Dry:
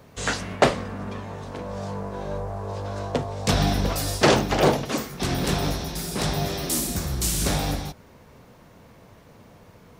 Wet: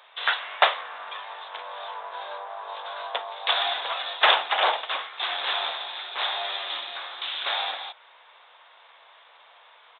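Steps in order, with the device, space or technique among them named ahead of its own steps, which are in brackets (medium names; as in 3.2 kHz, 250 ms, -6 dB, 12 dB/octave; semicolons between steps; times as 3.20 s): dynamic bell 4.3 kHz, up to -4 dB, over -42 dBFS, Q 0.82; musical greeting card (resampled via 8 kHz; high-pass 800 Hz 24 dB/octave; peaking EQ 3.6 kHz +11 dB 0.4 oct); trim +4 dB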